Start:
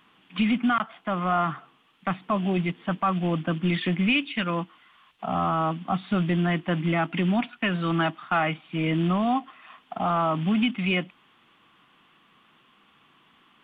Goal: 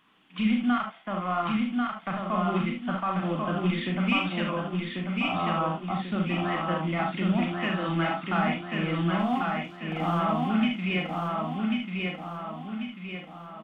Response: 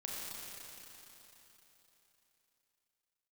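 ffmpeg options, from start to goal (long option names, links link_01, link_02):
-filter_complex "[0:a]acontrast=53,asettb=1/sr,asplit=3[link_01][link_02][link_03];[link_01]atrim=end=9.194[link_04];[link_02]atrim=start=9.19:end=10.19,asetpts=PTS-STARTPTS,afade=type=in:duration=0.004:curve=qsin,afade=type=out:start_time=0.996:duration=0.004:curve=qsin,aeval=exprs='sgn(val(0))*max(abs(val(0))-0.00891,0)':channel_layout=same[link_05];[link_03]atrim=start=10.186[link_06];[link_04][link_05]acrossfade=duration=0.004:curve1=hsin:curve2=qsin[link_07];[link_07][link_06]acrossfade=duration=0.004:curve1=qsin:curve2=hsin,aecho=1:1:1091|2182|3273|4364|5455|6546:0.708|0.333|0.156|0.0735|0.0345|0.0162[link_08];[1:a]atrim=start_sample=2205,afade=type=out:start_time=0.13:duration=0.01,atrim=end_sample=6174[link_09];[link_08][link_09]afir=irnorm=-1:irlink=0,volume=-6.5dB"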